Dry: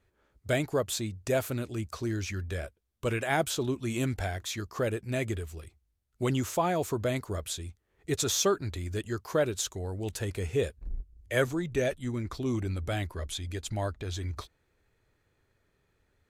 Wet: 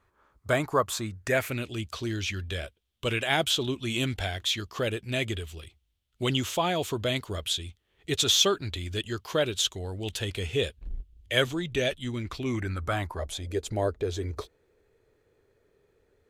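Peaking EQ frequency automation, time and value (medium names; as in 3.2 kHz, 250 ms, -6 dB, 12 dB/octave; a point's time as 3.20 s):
peaking EQ +14 dB 0.8 oct
0.94 s 1.1 kHz
1.74 s 3.2 kHz
12.23 s 3.2 kHz
13.57 s 440 Hz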